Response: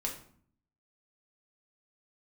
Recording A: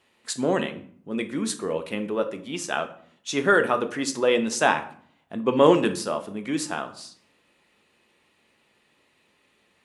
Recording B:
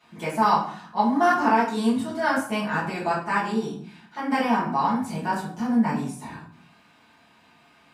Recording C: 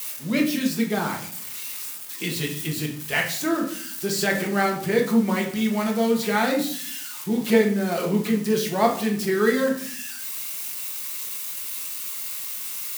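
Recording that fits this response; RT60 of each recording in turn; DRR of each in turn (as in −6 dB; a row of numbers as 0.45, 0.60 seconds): C; 0.55, 0.55, 0.55 seconds; 7.0, −10.5, −1.0 decibels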